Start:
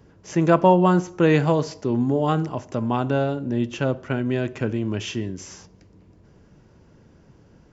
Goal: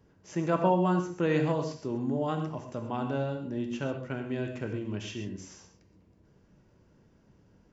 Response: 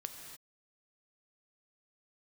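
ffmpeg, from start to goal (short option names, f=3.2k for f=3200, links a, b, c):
-filter_complex "[1:a]atrim=start_sample=2205,afade=t=out:st=0.28:d=0.01,atrim=end_sample=12789,asetrate=70560,aresample=44100[a];[0:a][a]afir=irnorm=-1:irlink=0,volume=-2.5dB"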